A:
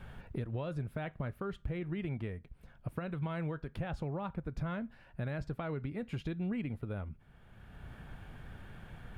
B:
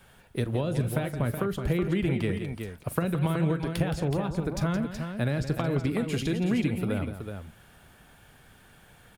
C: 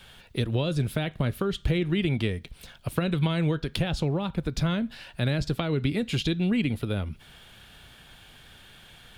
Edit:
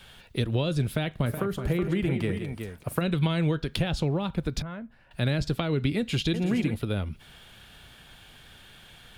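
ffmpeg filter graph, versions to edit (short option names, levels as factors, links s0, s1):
-filter_complex "[1:a]asplit=2[s0][s1];[2:a]asplit=4[s2][s3][s4][s5];[s2]atrim=end=1.262[s6];[s0]atrim=start=1.258:end=3.012[s7];[s3]atrim=start=3.008:end=4.622[s8];[0:a]atrim=start=4.618:end=5.112[s9];[s4]atrim=start=5.108:end=6.342[s10];[s1]atrim=start=6.338:end=6.742[s11];[s5]atrim=start=6.738[s12];[s6][s7]acrossfade=d=0.004:c1=hsin:c2=hsin[s13];[s13][s8]acrossfade=d=0.004:c1=hsin:c2=hsin[s14];[s14][s9]acrossfade=d=0.004:c1=hsin:c2=hsin[s15];[s15][s10]acrossfade=d=0.004:c1=hsin:c2=hsin[s16];[s16][s11]acrossfade=d=0.004:c1=hsin:c2=hsin[s17];[s17][s12]acrossfade=d=0.004:c1=hsin:c2=hsin"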